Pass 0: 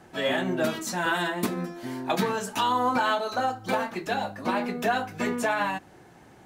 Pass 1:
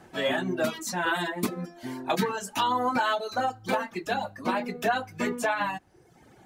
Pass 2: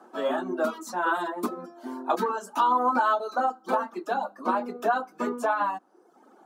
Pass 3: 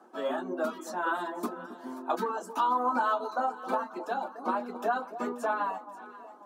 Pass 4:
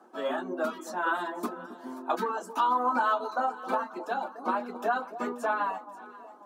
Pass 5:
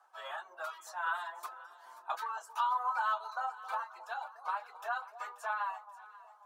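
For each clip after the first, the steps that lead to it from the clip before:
reverb removal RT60 0.91 s
steep high-pass 220 Hz 48 dB/oct; resonant high shelf 1600 Hz -7.5 dB, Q 3
echo with dull and thin repeats by turns 0.267 s, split 970 Hz, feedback 66%, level -12 dB; gain -4.5 dB
dynamic EQ 2200 Hz, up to +4 dB, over -42 dBFS, Q 0.82
inverse Chebyshev high-pass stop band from 180 Hz, stop band 70 dB; gain -5 dB

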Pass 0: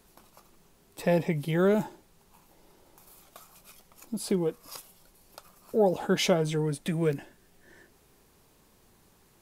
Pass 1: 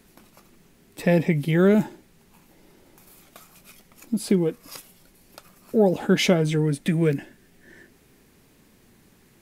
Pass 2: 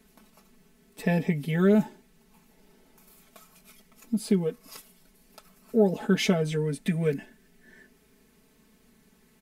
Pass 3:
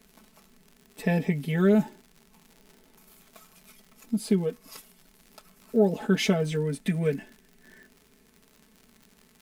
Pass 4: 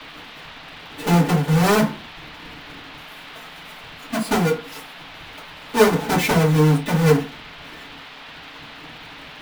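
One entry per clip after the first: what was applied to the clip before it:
graphic EQ 125/250/1000/2000 Hz +3/+7/-4/+6 dB; gain +2.5 dB
comb 4.6 ms, depth 91%; gain -7.5 dB
crackle 99/s -41 dBFS
half-waves squared off; FDN reverb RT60 0.34 s, low-frequency decay 1×, high-frequency decay 0.5×, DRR -6.5 dB; band noise 580–3700 Hz -37 dBFS; gain -3.5 dB

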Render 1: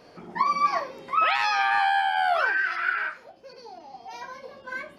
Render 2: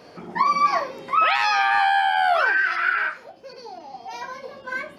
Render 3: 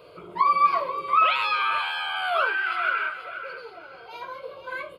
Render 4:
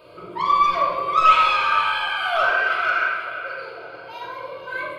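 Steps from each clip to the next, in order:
HPF 60 Hz; in parallel at -2 dB: limiter -18 dBFS, peak gain reduction 7.5 dB
fixed phaser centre 1200 Hz, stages 8; on a send: feedback echo 0.483 s, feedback 30%, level -11.5 dB
soft clip -15.5 dBFS, distortion -16 dB; shoebox room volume 1600 m³, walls mixed, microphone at 2.7 m

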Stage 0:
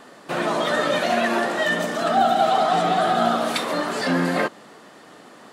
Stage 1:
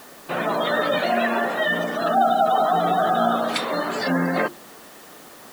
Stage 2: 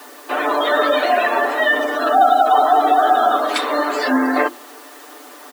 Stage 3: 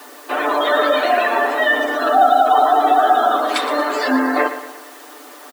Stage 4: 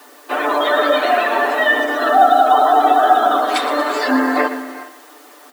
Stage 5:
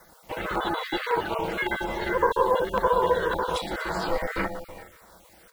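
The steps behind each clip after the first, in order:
spectral gate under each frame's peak -25 dB strong; notches 50/100/150/200/250/300/350 Hz; requantised 8-bit, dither triangular
rippled Chebyshev high-pass 250 Hz, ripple 3 dB; comb 6.8 ms; gain +5 dB
feedback echo 0.117 s, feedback 46%, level -12 dB
non-linear reverb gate 0.44 s rising, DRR 11 dB; in parallel at +1 dB: limiter -11 dBFS, peak gain reduction 8 dB; on the sum: upward expander 1.5:1, over -24 dBFS; gain -1.5 dB
random spectral dropouts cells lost 23%; ring modulator 250 Hz; LFO notch saw down 1.8 Hz 690–3200 Hz; gain -5.5 dB

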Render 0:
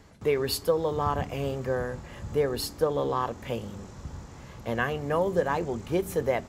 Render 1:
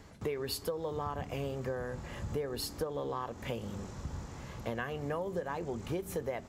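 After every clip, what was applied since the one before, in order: compressor, threshold -33 dBFS, peak gain reduction 13.5 dB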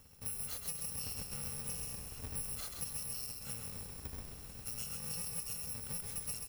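FFT order left unsorted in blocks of 128 samples; frequency-shifting echo 0.132 s, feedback 49%, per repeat -55 Hz, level -5 dB; gain -6.5 dB

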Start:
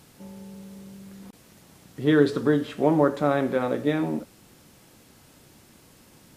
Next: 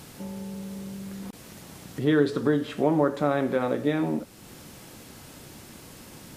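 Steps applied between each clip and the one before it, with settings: compressor 1.5:1, threshold -45 dBFS, peak gain reduction 11.5 dB; gain +8 dB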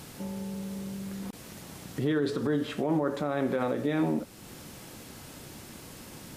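limiter -19 dBFS, peak gain reduction 9.5 dB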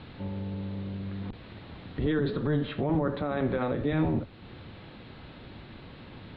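octaver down 1 oct, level 0 dB; elliptic low-pass 4000 Hz, stop band 40 dB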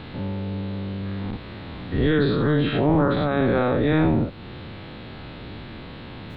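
spectral dilation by 0.12 s; gain +4 dB

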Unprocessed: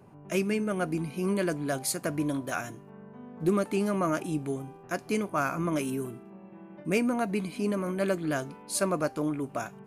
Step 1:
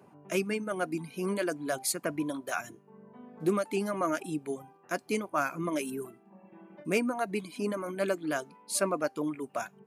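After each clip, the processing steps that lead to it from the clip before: Bessel high-pass 220 Hz, order 2; reverb removal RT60 0.87 s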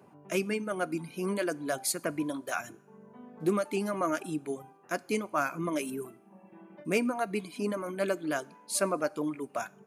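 two-slope reverb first 0.59 s, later 2.1 s, from -18 dB, DRR 20 dB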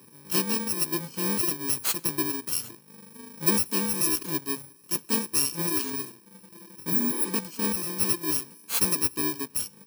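FFT order left unsorted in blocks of 64 samples; spectral repair 6.93–7.27, 260–11000 Hz; gain +4.5 dB

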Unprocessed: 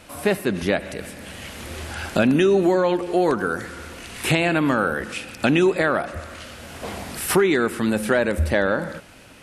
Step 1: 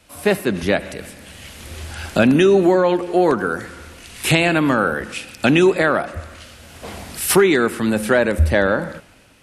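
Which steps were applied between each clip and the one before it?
three-band expander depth 40%; gain +3.5 dB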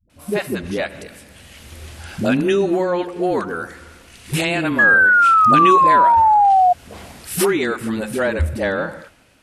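painted sound fall, 4.69–6.65, 710–1700 Hz -8 dBFS; dispersion highs, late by 98 ms, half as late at 330 Hz; gain -4 dB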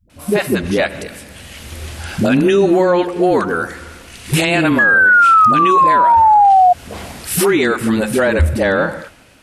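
limiter -12.5 dBFS, peak gain reduction 10.5 dB; gain +7.5 dB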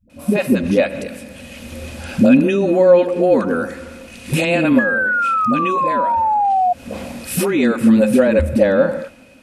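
compressor 2:1, threshold -14 dBFS, peak gain reduction 4 dB; small resonant body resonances 240/530/2500 Hz, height 14 dB, ringing for 45 ms; gain -5 dB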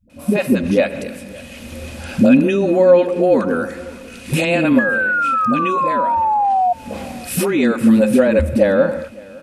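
echo 0.561 s -23.5 dB

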